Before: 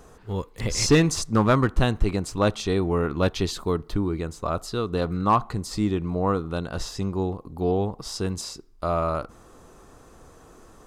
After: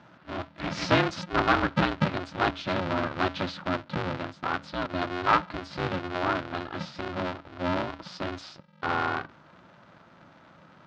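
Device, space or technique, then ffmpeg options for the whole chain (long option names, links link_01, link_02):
ring modulator pedal into a guitar cabinet: -af "bandreject=frequency=50:width_type=h:width=6,bandreject=frequency=100:width_type=h:width=6,aeval=exprs='val(0)*sgn(sin(2*PI*180*n/s))':channel_layout=same,highpass=100,equalizer=frequency=220:width_type=q:width=4:gain=-4,equalizer=frequency=450:width_type=q:width=4:gain=-9,equalizer=frequency=1400:width_type=q:width=4:gain=5,lowpass=frequency=4200:width=0.5412,lowpass=frequency=4200:width=1.3066,volume=-3dB"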